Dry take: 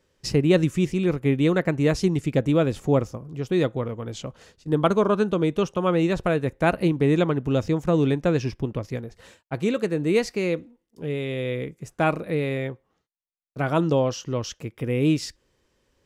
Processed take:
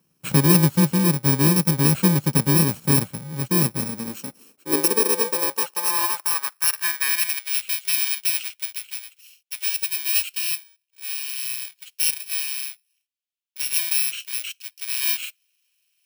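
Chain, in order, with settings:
samples in bit-reversed order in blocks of 64 samples
high-pass filter sweep 160 Hz → 2,700 Hz, 0:03.69–0:07.56

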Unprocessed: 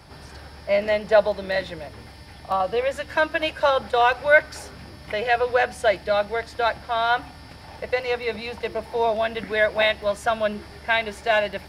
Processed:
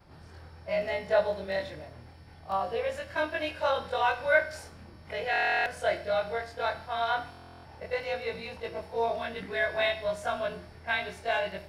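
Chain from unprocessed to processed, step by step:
every overlapping window played backwards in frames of 52 ms
four-comb reverb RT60 0.57 s, combs from 33 ms, DRR 11 dB
buffer that repeats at 0:05.31/0:07.30, samples 1,024, times 14
one half of a high-frequency compander decoder only
level −5 dB

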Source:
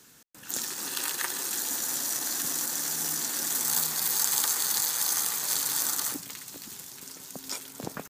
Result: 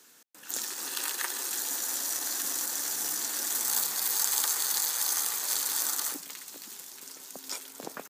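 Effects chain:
high-pass filter 310 Hz 12 dB per octave
level −1.5 dB

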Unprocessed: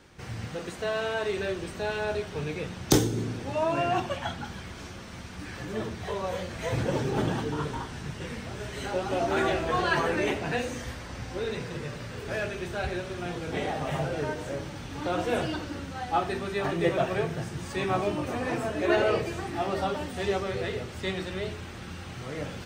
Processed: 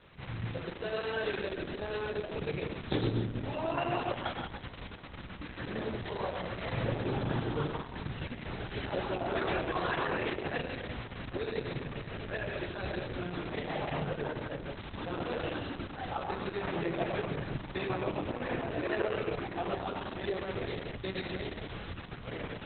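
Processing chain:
downward compressor 1.5 to 1, threshold −33 dBFS, peak gain reduction 6.5 dB
hum removal 155.5 Hz, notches 5
convolution reverb RT60 0.75 s, pre-delay 100 ms, DRR 4 dB
level −2.5 dB
Opus 6 kbit/s 48,000 Hz

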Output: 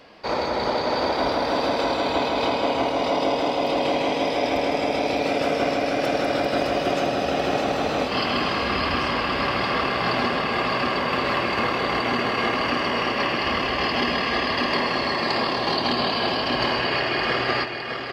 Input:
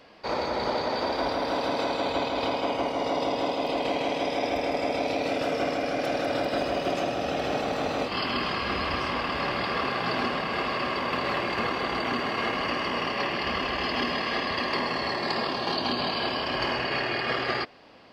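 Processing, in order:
single-tap delay 610 ms −6 dB
level +4 dB

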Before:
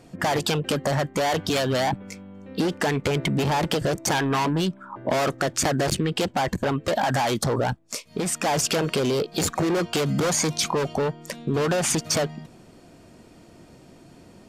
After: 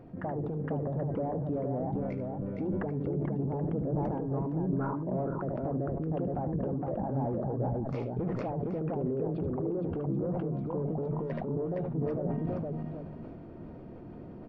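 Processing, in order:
treble cut that deepens with the level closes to 510 Hz, closed at −20 dBFS
high-shelf EQ 2,100 Hz −10 dB
reversed playback
downward compressor 10 to 1, threshold −33 dBFS, peak gain reduction 13.5 dB
reversed playback
head-to-tape spacing loss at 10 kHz 43 dB
on a send: multi-tap delay 75/463/780 ms −9.5/−3/−12 dB
on the sum: level that may fall only so fast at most 22 dB per second
level +2.5 dB

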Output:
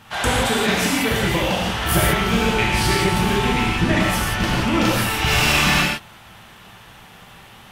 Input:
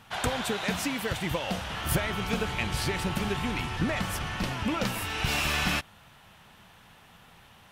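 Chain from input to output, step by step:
reverb whose tail is shaped and stops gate 200 ms flat, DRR −5 dB
level +5 dB

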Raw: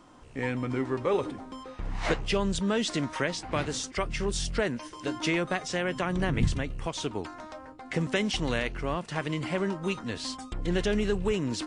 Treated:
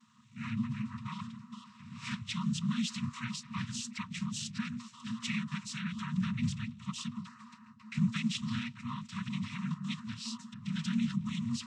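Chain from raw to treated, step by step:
cochlear-implant simulation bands 12
graphic EQ with 15 bands 250 Hz +10 dB, 630 Hz −8 dB, 1,600 Hz −7 dB
brick-wall band-stop 240–930 Hz
level −5 dB

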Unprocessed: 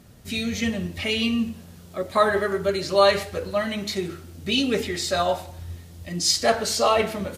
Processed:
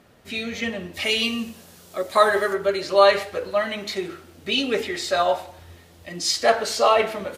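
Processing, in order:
bass and treble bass −14 dB, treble −11 dB, from 0:00.93 treble +3 dB, from 0:02.53 treble −7 dB
level +3 dB

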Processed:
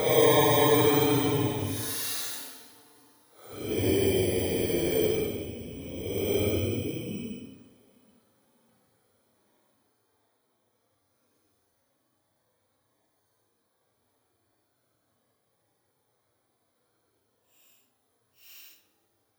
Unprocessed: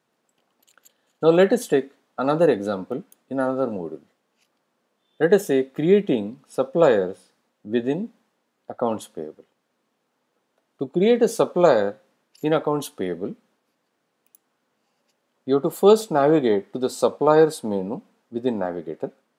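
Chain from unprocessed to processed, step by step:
samples in bit-reversed order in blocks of 16 samples
extreme stretch with random phases 11×, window 0.05 s, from 0:12.66
low shelf with overshoot 130 Hz +9 dB, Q 3
on a send: feedback echo with a low-pass in the loop 186 ms, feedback 36%, level −15.5 dB

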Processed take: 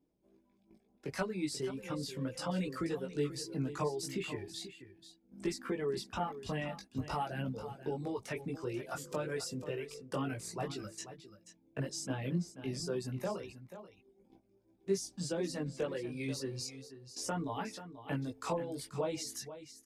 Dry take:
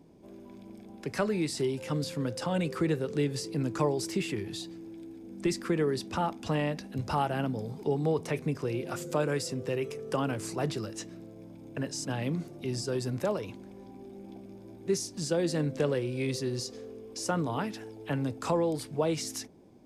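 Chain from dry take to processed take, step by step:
reverb reduction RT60 1.6 s
noise gate −46 dBFS, range −17 dB
downward compressor 1.5 to 1, threshold −34 dBFS, peak gain reduction 4.5 dB
multi-voice chorus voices 6, 0.35 Hz, delay 19 ms, depth 3.7 ms
single-tap delay 485 ms −12.5 dB

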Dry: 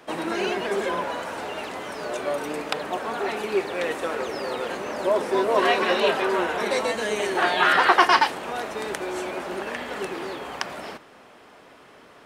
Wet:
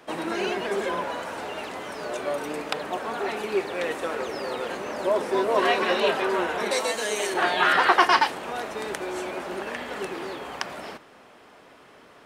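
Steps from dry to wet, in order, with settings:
0:06.71–0:07.34: bass and treble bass −9 dB, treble +8 dB
level −1.5 dB

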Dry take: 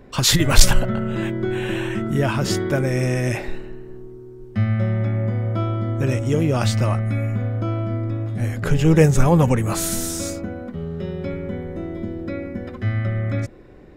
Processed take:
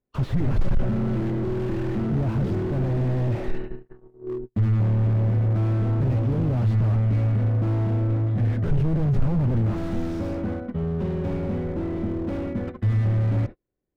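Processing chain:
0:03.85–0:04.45: parametric band 1,800 Hz → 240 Hz +11 dB 1.4 octaves
noise gate −31 dBFS, range −42 dB
soft clipping −18 dBFS, distortion −6 dB
high-frequency loss of the air 290 metres
slew-rate limiting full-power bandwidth 11 Hz
level +4 dB

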